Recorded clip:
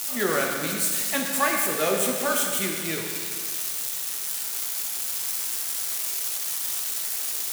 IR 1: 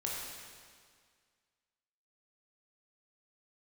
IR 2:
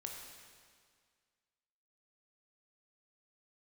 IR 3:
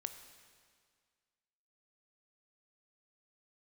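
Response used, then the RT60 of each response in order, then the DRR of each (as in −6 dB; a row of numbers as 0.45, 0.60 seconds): 2; 1.9, 1.9, 1.9 seconds; −4.5, 0.5, 8.0 decibels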